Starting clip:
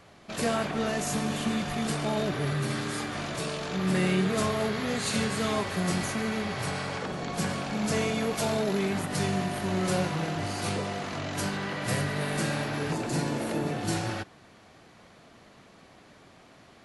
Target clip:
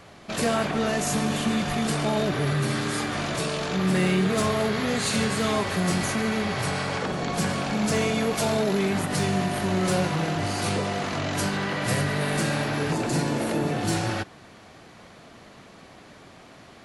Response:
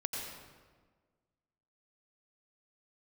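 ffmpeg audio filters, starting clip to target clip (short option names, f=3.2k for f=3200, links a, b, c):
-filter_complex "[0:a]asplit=2[a][b];[b]alimiter=level_in=1dB:limit=-24dB:level=0:latency=1:release=157,volume=-1dB,volume=-2dB[c];[a][c]amix=inputs=2:normalize=0,asoftclip=type=hard:threshold=-17dB,volume=1dB"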